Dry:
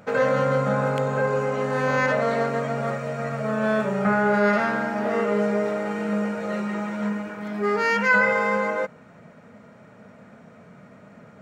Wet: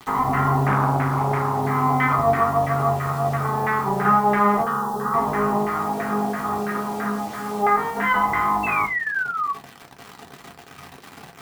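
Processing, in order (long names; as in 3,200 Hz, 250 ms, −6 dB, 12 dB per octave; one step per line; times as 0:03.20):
lower of the sound and its delayed copy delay 0.96 ms
auto-filter low-pass saw down 3 Hz 680–1,800 Hz
bit reduction 7 bits
0:04.62–0:05.14: phaser with its sweep stopped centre 440 Hz, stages 8
0:08.63–0:09.53: sound drawn into the spectrogram fall 1,100–2,700 Hz −28 dBFS
in parallel at −2 dB: downward compressor, threshold −32 dBFS, peak gain reduction 16 dB
on the sum: high-pass filter 73 Hz
on a send at −1 dB: convolution reverb RT60 0.25 s, pre-delay 3 ms
0:00.67–0:01.62: on the sum: highs frequency-modulated by the lows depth 0.26 ms
level −2.5 dB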